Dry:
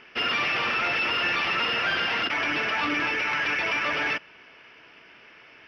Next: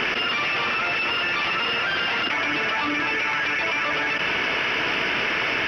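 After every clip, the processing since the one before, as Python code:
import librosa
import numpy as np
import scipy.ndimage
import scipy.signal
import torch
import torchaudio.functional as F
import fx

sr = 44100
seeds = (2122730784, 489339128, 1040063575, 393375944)

y = fx.env_flatten(x, sr, amount_pct=100)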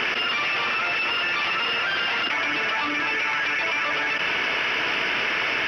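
y = fx.low_shelf(x, sr, hz=420.0, db=-6.0)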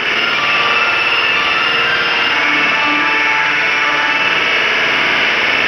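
y = fx.room_flutter(x, sr, wall_m=9.2, rt60_s=1.4)
y = y * librosa.db_to_amplitude(7.0)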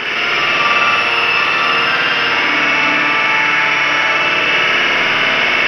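y = fx.rev_freeverb(x, sr, rt60_s=1.6, hf_ratio=0.55, predelay_ms=105, drr_db=-1.0)
y = y * librosa.db_to_amplitude(-3.5)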